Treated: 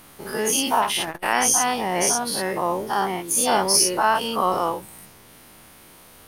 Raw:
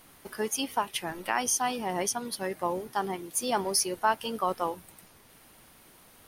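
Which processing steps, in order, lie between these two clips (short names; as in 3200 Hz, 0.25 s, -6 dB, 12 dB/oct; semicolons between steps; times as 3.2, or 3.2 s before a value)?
spectral dilation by 0.12 s; 0.82–1.24 core saturation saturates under 1400 Hz; gain +3 dB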